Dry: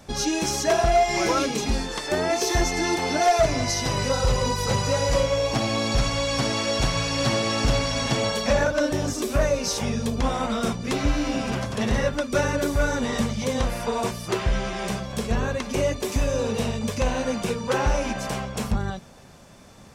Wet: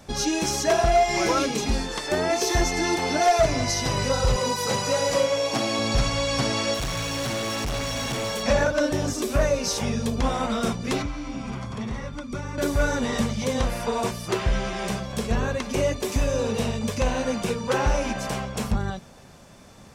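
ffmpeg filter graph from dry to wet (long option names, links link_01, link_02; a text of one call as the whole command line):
ffmpeg -i in.wav -filter_complex "[0:a]asettb=1/sr,asplit=3[link_01][link_02][link_03];[link_01]atrim=end=4.364[link_04];[link_02]atrim=start=4.36:end=5.79,asetpts=PTS-STARTPTS,afade=type=in:duration=0.004:curve=qsin,afade=type=out:start_time=1.426:duration=0.004:curve=qsin,highpass=190,highshelf=frequency=9700:gain=5,asplit=2[link_05][link_06];[link_06]adelay=39,volume=-13dB[link_07];[link_05][link_07]amix=inputs=2:normalize=0,atrim=end_sample=63063[link_08];[link_03]atrim=start=5.786[link_09];[link_04][link_08]acrossfade=duration=0.004:curve1=hsin:curve2=qsin[link_10];[link_10][link_09]acrossfade=duration=0.004:curve1=qsin:curve2=hsin,asettb=1/sr,asplit=3[link_11][link_12][link_13];[link_11]atrim=end=6.744[link_14];[link_12]atrim=start=6.74:end=8.43,asetpts=PTS-STARTPTS,afade=type=in:duration=0.004:curve=qsin,afade=type=out:start_time=1.686:duration=0.004:curve=qsin,asuperstop=centerf=4800:order=4:qfactor=6.4,highshelf=frequency=12000:gain=6.5,volume=25.5dB,asoftclip=hard,volume=-25.5dB[link_15];[link_13]atrim=start=8.426[link_16];[link_14][link_15]acrossfade=duration=0.004:curve1=hsin:curve2=qsin[link_17];[link_17][link_16]acrossfade=duration=0.004:curve1=qsin:curve2=hsin,asettb=1/sr,asplit=3[link_18][link_19][link_20];[link_18]atrim=end=11.024[link_21];[link_19]atrim=start=11.02:end=12.58,asetpts=PTS-STARTPTS,afade=type=in:duration=0.004:curve=qsin,afade=type=out:start_time=1.556:duration=0.004:curve=qsin,aecho=1:1:0.9:0.42,atrim=end_sample=68796,acrossover=split=260|2300[link_22][link_23][link_24];[link_22]acompressor=threshold=-32dB:ratio=4[link_25];[link_23]acompressor=threshold=-37dB:ratio=4[link_26];[link_24]acompressor=threshold=-49dB:ratio=4[link_27];[link_25][link_26][link_27]amix=inputs=3:normalize=0,lowpass=9700[link_28];[link_20]atrim=start=12.576[link_29];[link_21][link_28]acrossfade=duration=0.004:curve1=hsin:curve2=qsin[link_30];[link_30][link_29]acrossfade=duration=0.004:curve1=qsin:curve2=hsin" out.wav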